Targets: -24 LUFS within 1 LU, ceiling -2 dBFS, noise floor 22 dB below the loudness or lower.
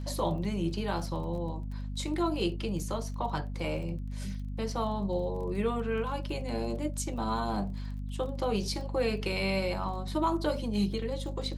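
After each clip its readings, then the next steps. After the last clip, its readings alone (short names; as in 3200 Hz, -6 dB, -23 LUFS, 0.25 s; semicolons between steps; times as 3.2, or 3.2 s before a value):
ticks 24/s; hum 50 Hz; harmonics up to 250 Hz; hum level -34 dBFS; loudness -32.5 LUFS; peak -17.5 dBFS; loudness target -24.0 LUFS
-> de-click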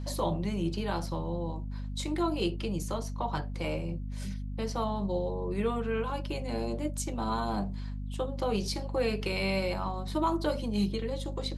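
ticks 0/s; hum 50 Hz; harmonics up to 250 Hz; hum level -34 dBFS
-> notches 50/100/150/200/250 Hz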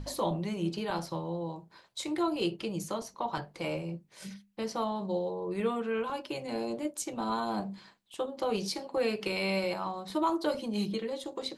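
hum none; loudness -33.5 LUFS; peak -18.0 dBFS; loudness target -24.0 LUFS
-> gain +9.5 dB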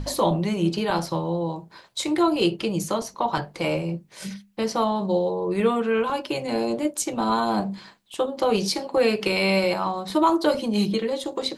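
loudness -24.0 LUFS; peak -8.5 dBFS; noise floor -54 dBFS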